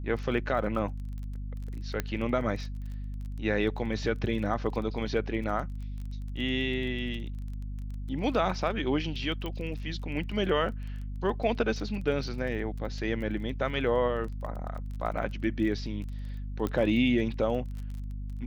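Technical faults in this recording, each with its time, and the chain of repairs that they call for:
crackle 21 per s -38 dBFS
hum 50 Hz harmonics 5 -36 dBFS
2.00 s: pop -15 dBFS
9.46 s: pop -23 dBFS
16.67 s: pop -19 dBFS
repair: de-click; de-hum 50 Hz, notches 5

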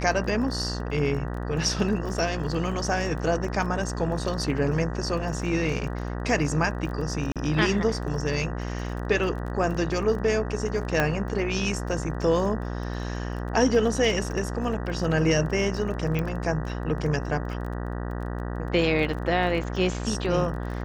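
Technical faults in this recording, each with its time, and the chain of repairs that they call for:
buzz 60 Hz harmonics 32 -31 dBFS
crackle 20 per s -34 dBFS
7.32–7.36 s: dropout 37 ms
11.00 s: pop -9 dBFS
16.19 s: pop -16 dBFS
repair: de-click; de-hum 60 Hz, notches 32; interpolate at 7.32 s, 37 ms

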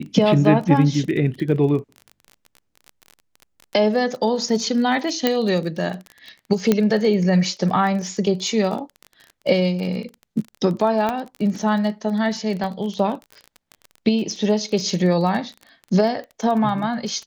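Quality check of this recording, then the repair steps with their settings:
crackle 25 per s -28 dBFS
5.27 s: pop -4 dBFS
6.72 s: pop -4 dBFS
11.09 s: pop -10 dBFS
12.64 s: dropout 2.1 ms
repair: de-click; interpolate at 12.64 s, 2.1 ms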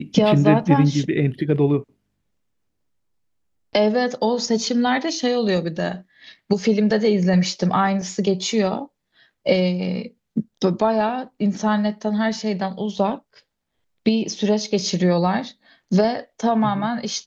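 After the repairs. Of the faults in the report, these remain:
nothing left

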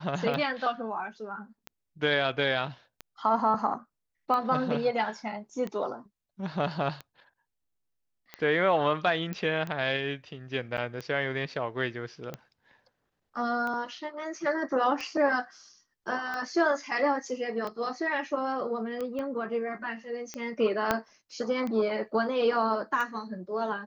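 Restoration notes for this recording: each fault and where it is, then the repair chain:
tick 45 rpm -22 dBFS
9.33 s: pop -21 dBFS
10.77–10.78 s: dropout 7.9 ms
19.19 s: pop -24 dBFS
20.91 s: pop -10 dBFS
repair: de-click; interpolate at 10.77 s, 7.9 ms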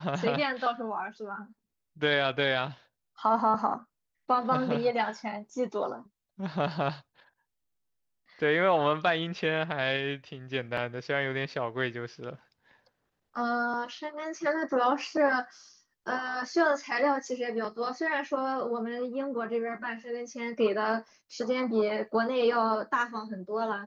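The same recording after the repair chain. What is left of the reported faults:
19.19 s: pop
20.91 s: pop

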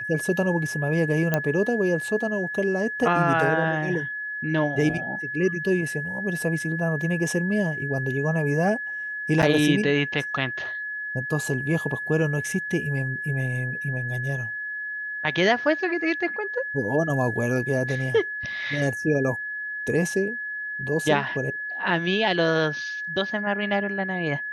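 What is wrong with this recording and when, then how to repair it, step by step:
whine 1.7 kHz -29 dBFS
1.34 s: pop -8 dBFS
9.42–9.43 s: dropout 7.7 ms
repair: de-click; band-stop 1.7 kHz, Q 30; interpolate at 9.42 s, 7.7 ms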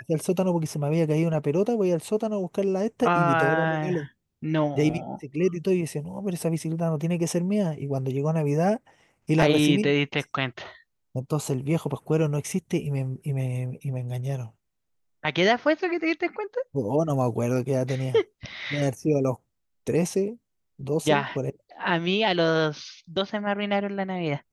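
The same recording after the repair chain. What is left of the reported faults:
nothing left

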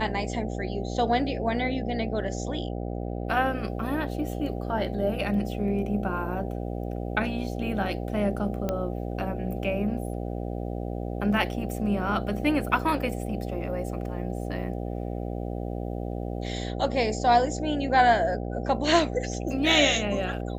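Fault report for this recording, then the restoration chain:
buzz 60 Hz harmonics 13 -32 dBFS
8.69 s: pop -15 dBFS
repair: de-click; de-hum 60 Hz, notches 13

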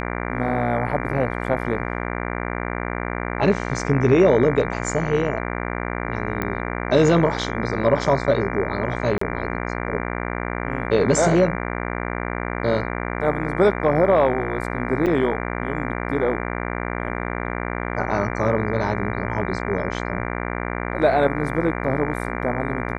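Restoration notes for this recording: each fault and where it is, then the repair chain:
buzz 60 Hz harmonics 39 -27 dBFS
6.42 s: pop -11 dBFS
9.18–9.21 s: dropout 34 ms
15.06–15.07 s: dropout 7.2 ms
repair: de-click; de-hum 60 Hz, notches 39; interpolate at 9.18 s, 34 ms; interpolate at 15.06 s, 7.2 ms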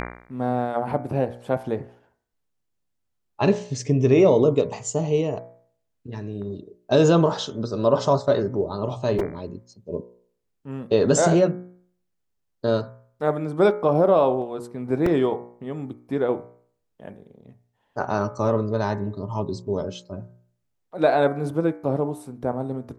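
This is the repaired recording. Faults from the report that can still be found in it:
nothing left

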